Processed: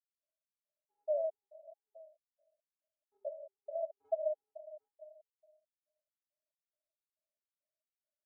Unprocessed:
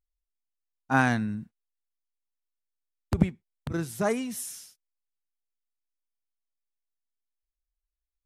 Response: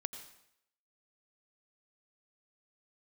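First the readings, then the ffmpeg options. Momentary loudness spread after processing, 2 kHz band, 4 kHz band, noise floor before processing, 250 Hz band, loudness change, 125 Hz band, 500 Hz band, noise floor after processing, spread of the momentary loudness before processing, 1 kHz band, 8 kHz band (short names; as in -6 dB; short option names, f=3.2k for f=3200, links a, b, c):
22 LU, under -40 dB, under -35 dB, under -85 dBFS, under -40 dB, -10.5 dB, under -40 dB, -2.0 dB, under -85 dBFS, 14 LU, under -15 dB, under -40 dB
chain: -filter_complex "[0:a]acontrast=75,aresample=16000,asoftclip=type=hard:threshold=-21dB,aresample=44100,asuperpass=centerf=610:order=12:qfactor=6.2,asplit=2[a][b];[b]adelay=758,volume=-19dB,highshelf=f=4k:g=-17.1[c];[a][c]amix=inputs=2:normalize=0,asplit=2[d][e];[1:a]atrim=start_sample=2205,asetrate=22932,aresample=44100[f];[e][f]afir=irnorm=-1:irlink=0,volume=-9.5dB[g];[d][g]amix=inputs=2:normalize=0,afftfilt=real='re*gt(sin(2*PI*2.3*pts/sr)*(1-2*mod(floor(b*sr/1024/430),2)),0)':imag='im*gt(sin(2*PI*2.3*pts/sr)*(1-2*mod(floor(b*sr/1024/430),2)),0)':win_size=1024:overlap=0.75,volume=8.5dB"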